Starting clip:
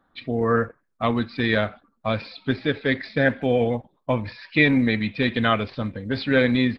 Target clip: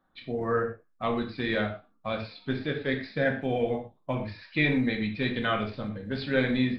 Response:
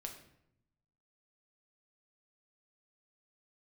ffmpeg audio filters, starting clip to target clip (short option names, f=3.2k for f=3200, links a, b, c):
-filter_complex "[1:a]atrim=start_sample=2205,atrim=end_sample=6174,asetrate=48510,aresample=44100[a];[0:a][a]afir=irnorm=-1:irlink=0,volume=-2dB"